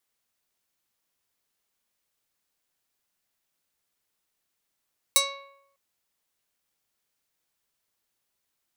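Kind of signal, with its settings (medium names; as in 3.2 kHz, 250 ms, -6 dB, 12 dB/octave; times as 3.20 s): plucked string C#5, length 0.60 s, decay 0.81 s, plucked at 0.34, medium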